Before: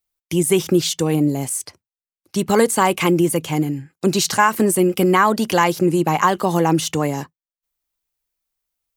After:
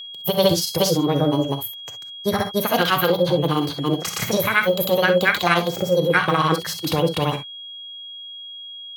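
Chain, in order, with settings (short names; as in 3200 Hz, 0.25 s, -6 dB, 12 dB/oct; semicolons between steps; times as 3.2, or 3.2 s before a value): fifteen-band EQ 100 Hz +7 dB, 250 Hz -6 dB, 6300 Hz -11 dB; in parallel at +1 dB: limiter -13.5 dBFS, peak gain reduction 10.5 dB; on the sum: grains, grains 17/s, spray 0.327 s, pitch spread up and down by 0 st; formant shift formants +6 st; whine 3300 Hz -29 dBFS; on a send at -7.5 dB: reverb, pre-delay 3 ms; on the sum: gain -3.5 dB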